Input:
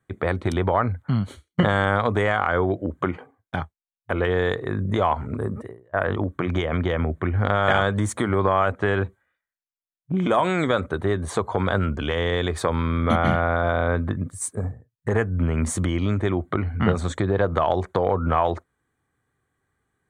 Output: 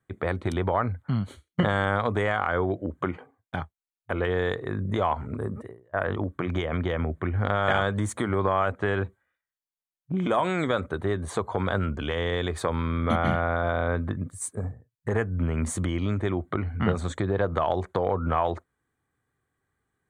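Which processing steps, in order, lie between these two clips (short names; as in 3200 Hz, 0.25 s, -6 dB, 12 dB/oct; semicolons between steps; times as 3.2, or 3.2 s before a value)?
bell 5400 Hz -3 dB 0.27 oct; gain -4 dB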